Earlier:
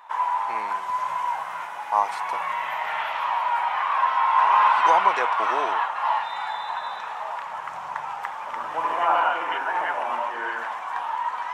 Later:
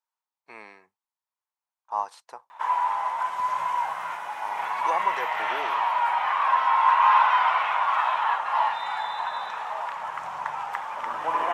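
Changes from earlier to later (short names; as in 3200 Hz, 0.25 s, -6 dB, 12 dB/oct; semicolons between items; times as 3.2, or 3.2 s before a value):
speech -6.5 dB; background: entry +2.50 s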